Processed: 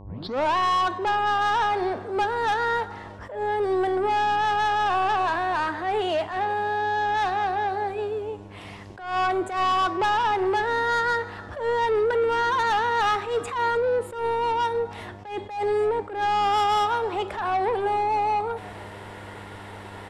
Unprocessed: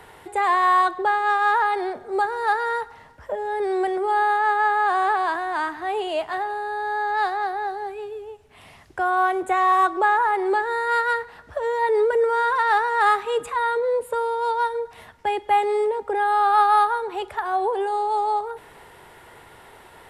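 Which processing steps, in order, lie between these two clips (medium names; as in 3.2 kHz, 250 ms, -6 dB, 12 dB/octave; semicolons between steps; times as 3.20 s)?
tape start-up on the opening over 0.56 s; low-pass 7.6 kHz 12 dB/octave; in parallel at -0.5 dB: compression, threshold -29 dBFS, peak gain reduction 15 dB; on the sum: saturation -19 dBFS, distortion -11 dB; de-hum 195.3 Hz, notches 40; mains buzz 100 Hz, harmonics 11, -44 dBFS -5 dB/octave; on a send: frequency-shifting echo 309 ms, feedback 51%, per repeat -110 Hz, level -23 dB; on the sum: attacks held to a fixed rise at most 100 dB/s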